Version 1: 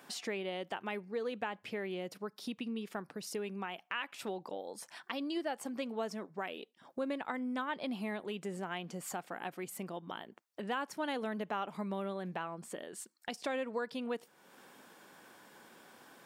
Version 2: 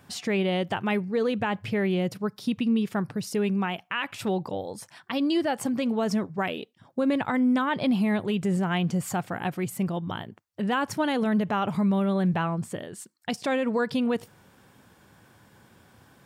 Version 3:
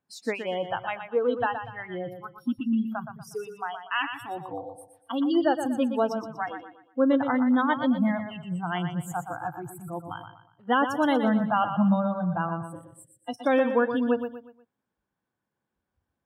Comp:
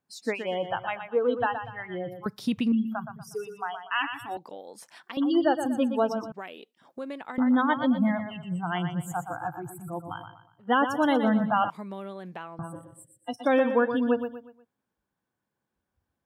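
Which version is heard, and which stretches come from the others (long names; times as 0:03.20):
3
0:02.26–0:02.72: punch in from 2
0:04.37–0:05.17: punch in from 1
0:06.32–0:07.38: punch in from 1
0:11.70–0:12.59: punch in from 1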